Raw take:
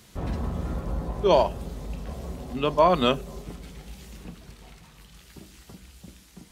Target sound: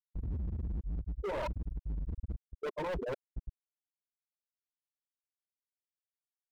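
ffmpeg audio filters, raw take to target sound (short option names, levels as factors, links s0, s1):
-filter_complex "[0:a]asplit=2[s0][s1];[s1]acompressor=mode=upward:threshold=0.0282:ratio=2.5,volume=0.944[s2];[s0][s2]amix=inputs=2:normalize=0,aeval=exprs='(mod(2.11*val(0)+1,2)-1)/2.11':c=same,asplit=3[s3][s4][s5];[s4]asetrate=52444,aresample=44100,atempo=0.840896,volume=0.2[s6];[s5]asetrate=88200,aresample=44100,atempo=0.5,volume=0.2[s7];[s3][s6][s7]amix=inputs=3:normalize=0,lowpass=f=1100:w=0.5412,lowpass=f=1100:w=1.3066,aecho=1:1:2.1:0.59,afftfilt=real='re*gte(hypot(re,im),0.562)':imag='im*gte(hypot(re,im),0.562)':win_size=1024:overlap=0.75,areverse,acompressor=threshold=0.0251:ratio=16,areverse,agate=range=0.355:threshold=0.00282:ratio=16:detection=peak,asoftclip=type=hard:threshold=0.0112,volume=1.88"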